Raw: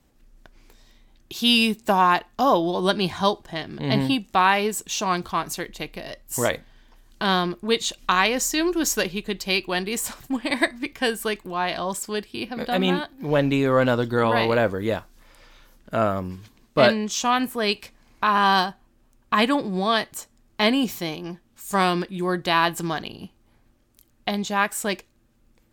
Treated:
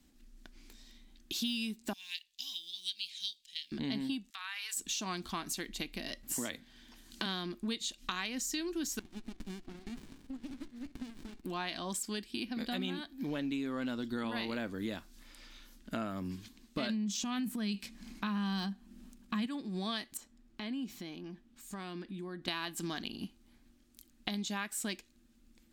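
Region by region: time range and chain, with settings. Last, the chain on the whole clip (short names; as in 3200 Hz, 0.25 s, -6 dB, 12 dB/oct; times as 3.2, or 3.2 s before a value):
1.93–3.72 block floating point 7-bit + inverse Chebyshev high-pass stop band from 1400 Hz + high shelf 5900 Hz -9 dB
4.3–4.77 HPF 1200 Hz 24 dB/oct + compressor 5:1, threshold -33 dBFS
6.23–7.26 HPF 50 Hz + three-band squash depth 40%
8.99–11.44 brick-wall FIR high-pass 230 Hz + compressor 16:1, threshold -36 dBFS + running maximum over 65 samples
16.89–19.46 bell 200 Hz +15 dB 0.36 oct + transient shaper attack -5 dB, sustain +8 dB
20.17–22.48 compressor 3:1, threshold -38 dBFS + high shelf 3500 Hz -11.5 dB
whole clip: de-esser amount 40%; graphic EQ 125/250/500/1000/4000/8000 Hz -10/+9/-9/-5/+4/+3 dB; compressor 6:1, threshold -31 dBFS; gain -3.5 dB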